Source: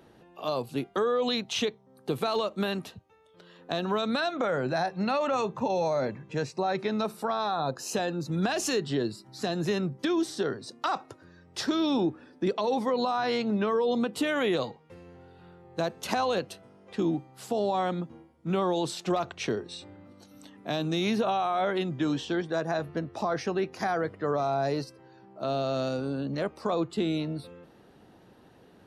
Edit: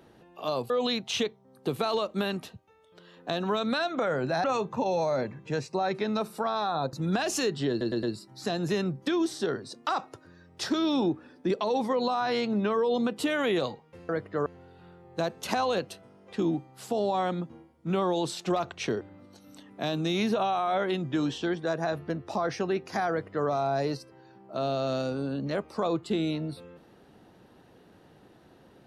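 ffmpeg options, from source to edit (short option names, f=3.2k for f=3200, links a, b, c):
-filter_complex "[0:a]asplit=10[a][b][c][d][e][f][g][h][i][j];[a]atrim=end=0.702[k];[b]atrim=start=1.118:end=4.862[l];[c]atrim=start=5.278:end=7.772[m];[d]atrim=start=8.228:end=9.112[n];[e]atrim=start=8.998:end=9.112[o];[f]atrim=start=8.998:end=9.112[p];[g]atrim=start=8.998:end=15.062[q];[h]atrim=start=23.968:end=24.342[r];[i]atrim=start=15.058:end=19.612[s];[j]atrim=start=19.878[t];[k][l]acrossfade=d=0.004:c1=hsin:c2=hsin[u];[u][m]acrossfade=d=0.004:c1=hsin:c2=hsin[v];[v][n]acrossfade=d=0.004:c1=hsin:c2=hsin[w];[w][o]acrossfade=d=0.004:c1=hsin:c2=hsin[x];[x][p]acrossfade=d=0.004:c1=hsin:c2=hsin[y];[y][q]acrossfade=d=0.004:c1=hsin:c2=hsin[z];[z][r]acrossfade=d=0.004:c1=hsin:c2=hsin[aa];[aa][s]acrossfade=d=0.004:c1=hsin:c2=hsin[ab];[ab][t]acrossfade=d=0.004:c1=hsin:c2=hsin"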